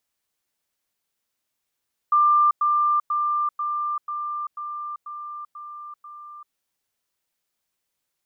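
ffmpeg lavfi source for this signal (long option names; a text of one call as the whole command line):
ffmpeg -f lavfi -i "aevalsrc='pow(10,(-14-3*floor(t/0.49))/20)*sin(2*PI*1190*t)*clip(min(mod(t,0.49),0.39-mod(t,0.49))/0.005,0,1)':duration=4.41:sample_rate=44100" out.wav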